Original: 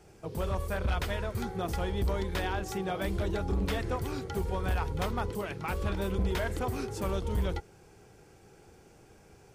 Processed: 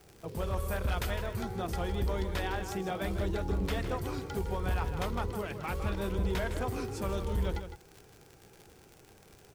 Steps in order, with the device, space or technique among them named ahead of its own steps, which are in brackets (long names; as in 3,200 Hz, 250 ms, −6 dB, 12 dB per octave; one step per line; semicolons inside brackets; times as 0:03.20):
0:00.57–0:01.10: high-shelf EQ 8,900 Hz +10 dB
vinyl LP (tape wow and flutter 24 cents; surface crackle 80 per second −38 dBFS; white noise bed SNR 37 dB)
slap from a distant wall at 27 metres, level −9 dB
level −2 dB